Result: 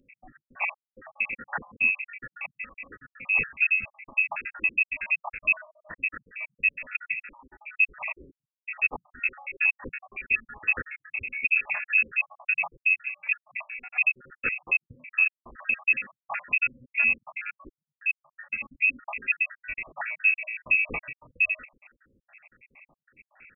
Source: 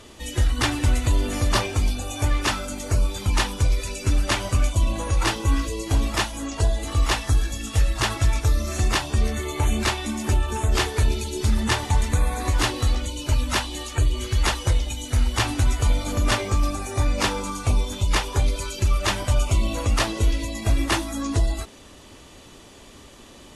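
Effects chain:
time-frequency cells dropped at random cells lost 77%
voice inversion scrambler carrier 2,600 Hz
level −4 dB

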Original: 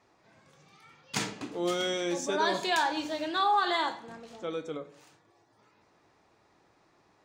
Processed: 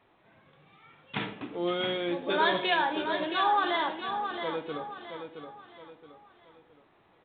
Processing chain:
0:02.30–0:02.74: parametric band 2,900 Hz +5.5 dB 2.7 octaves
repeating echo 671 ms, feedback 37%, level −7.5 dB
A-law companding 64 kbit/s 8,000 Hz

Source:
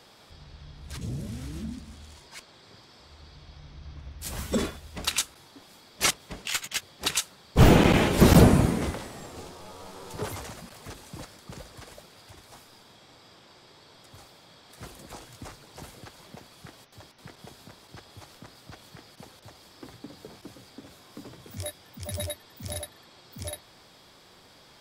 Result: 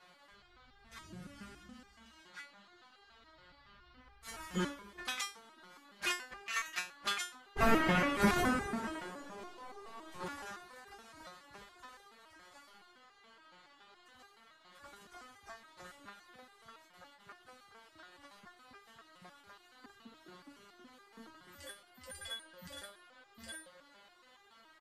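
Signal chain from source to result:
parametric band 1,600 Hz +13 dB 1.5 octaves
on a send: delay with a band-pass on its return 134 ms, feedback 82%, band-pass 580 Hz, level −16 dB
on the sum: pitch shifter −2 semitones
step-sequenced resonator 7.1 Hz 180–400 Hz

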